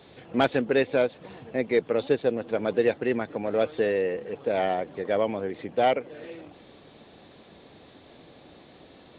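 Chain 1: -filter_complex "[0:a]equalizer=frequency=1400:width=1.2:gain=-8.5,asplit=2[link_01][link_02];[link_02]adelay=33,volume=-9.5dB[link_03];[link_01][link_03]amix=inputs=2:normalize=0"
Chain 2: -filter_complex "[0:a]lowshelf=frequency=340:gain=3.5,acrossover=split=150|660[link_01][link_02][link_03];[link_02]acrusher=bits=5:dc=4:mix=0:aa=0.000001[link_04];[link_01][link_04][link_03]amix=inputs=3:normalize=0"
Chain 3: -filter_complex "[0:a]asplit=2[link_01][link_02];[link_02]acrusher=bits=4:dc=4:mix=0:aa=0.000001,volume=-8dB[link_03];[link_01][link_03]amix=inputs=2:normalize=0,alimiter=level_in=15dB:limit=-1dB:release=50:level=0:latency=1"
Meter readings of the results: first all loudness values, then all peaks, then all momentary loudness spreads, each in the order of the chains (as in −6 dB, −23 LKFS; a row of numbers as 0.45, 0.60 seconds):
−27.5, −25.0, −13.5 LKFS; −11.0, −6.5, −1.0 dBFS; 8, 7, 7 LU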